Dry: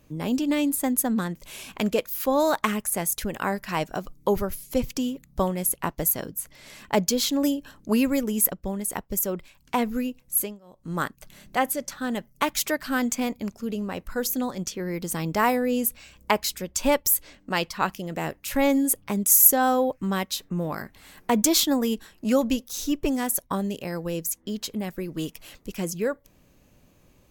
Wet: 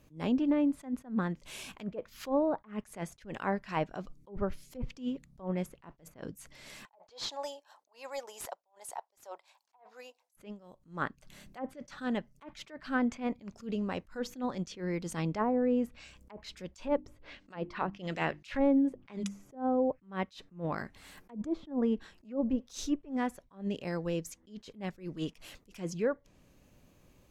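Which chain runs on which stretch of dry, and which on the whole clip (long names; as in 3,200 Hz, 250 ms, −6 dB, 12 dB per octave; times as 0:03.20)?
0:06.85–0:10.35: Chebyshev high-pass filter 790 Hz, order 3 + flat-topped bell 1,900 Hz −10 dB + mid-hump overdrive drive 17 dB, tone 1,000 Hz, clips at −6.5 dBFS
0:16.87–0:19.55: parametric band 3,900 Hz +11.5 dB 2.8 octaves + mains-hum notches 50/100/150/200/250/300/350 Hz
whole clip: high-shelf EQ 8,000 Hz −2 dB; treble cut that deepens with the level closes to 540 Hz, closed at −17 dBFS; level that may rise only so fast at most 200 dB per second; level −3.5 dB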